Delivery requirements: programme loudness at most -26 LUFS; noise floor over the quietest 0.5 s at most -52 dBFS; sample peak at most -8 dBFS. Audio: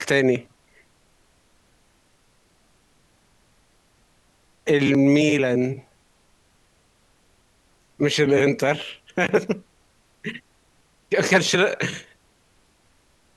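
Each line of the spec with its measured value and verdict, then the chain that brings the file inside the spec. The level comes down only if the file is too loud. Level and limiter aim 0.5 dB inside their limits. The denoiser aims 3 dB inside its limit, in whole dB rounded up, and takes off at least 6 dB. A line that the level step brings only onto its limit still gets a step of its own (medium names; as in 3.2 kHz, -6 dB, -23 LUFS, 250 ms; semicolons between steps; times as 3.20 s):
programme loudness -21.0 LUFS: fail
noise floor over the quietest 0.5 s -61 dBFS: pass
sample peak -4.5 dBFS: fail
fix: trim -5.5 dB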